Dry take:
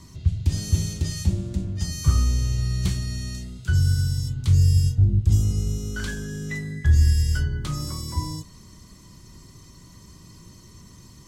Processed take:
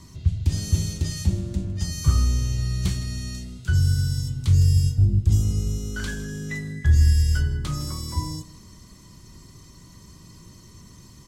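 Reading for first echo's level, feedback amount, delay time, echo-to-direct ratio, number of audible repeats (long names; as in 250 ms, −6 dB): −18.0 dB, 31%, 158 ms, −17.5 dB, 2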